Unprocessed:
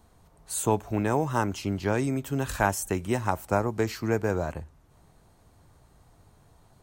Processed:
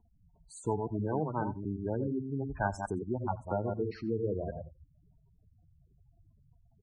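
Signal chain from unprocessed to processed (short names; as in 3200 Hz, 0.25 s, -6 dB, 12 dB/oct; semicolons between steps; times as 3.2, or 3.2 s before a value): reverse delay 0.11 s, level -4.5 dB; LPF 8400 Hz 12 dB/oct; spectral gate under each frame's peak -10 dB strong; high shelf 3600 Hz -8.5 dB, from 1.83 s -3 dB, from 3.91 s -8 dB; echo 88 ms -21 dB; gain -6.5 dB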